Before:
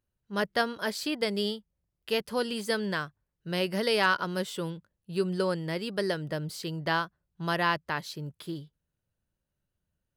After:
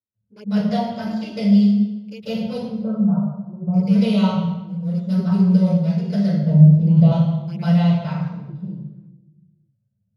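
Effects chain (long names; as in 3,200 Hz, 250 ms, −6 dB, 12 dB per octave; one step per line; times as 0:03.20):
adaptive Wiener filter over 41 samples
0:02.47–0:03.68: Butterworth low-pass 1,300 Hz 96 dB per octave
0:04.20–0:05.16: reverse
0:06.31–0:06.97: tilt shelving filter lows +8.5 dB
flanger swept by the level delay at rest 9.2 ms, full sweep at −24.5 dBFS
convolution reverb RT60 1.0 s, pre-delay 141 ms, DRR −14.5 dB
level −12 dB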